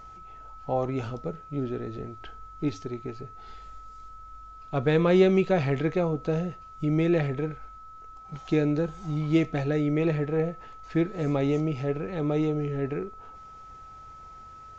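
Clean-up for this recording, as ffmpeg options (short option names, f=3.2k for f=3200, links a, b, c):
-af "bandreject=f=1.3k:w=30"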